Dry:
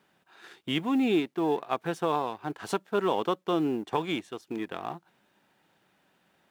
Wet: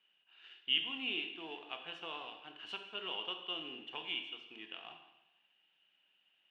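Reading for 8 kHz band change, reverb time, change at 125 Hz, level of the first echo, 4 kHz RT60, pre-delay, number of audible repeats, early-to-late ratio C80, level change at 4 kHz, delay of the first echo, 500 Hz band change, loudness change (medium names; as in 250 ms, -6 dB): under -20 dB, 0.95 s, -26.5 dB, no echo, 0.90 s, 16 ms, no echo, 9.5 dB, +3.0 dB, no echo, -21.5 dB, -10.0 dB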